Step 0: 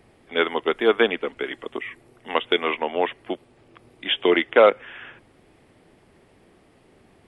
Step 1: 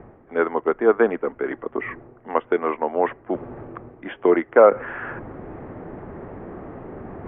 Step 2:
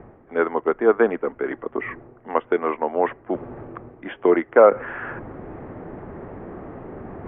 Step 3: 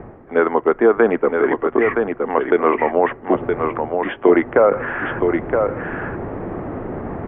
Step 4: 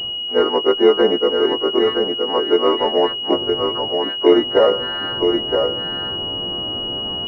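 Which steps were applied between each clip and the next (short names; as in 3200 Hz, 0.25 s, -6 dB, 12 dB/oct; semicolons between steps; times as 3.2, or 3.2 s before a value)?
LPF 1500 Hz 24 dB/oct; reverse; upward compressor, threshold -22 dBFS; reverse; gain +2 dB
nothing audible
limiter -12 dBFS, peak gain reduction 10 dB; air absorption 61 m; echo 0.969 s -5 dB; gain +8 dB
frequency quantiser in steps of 2 st; dynamic EQ 400 Hz, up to +5 dB, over -27 dBFS, Q 1.6; pulse-width modulation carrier 2900 Hz; gain -2.5 dB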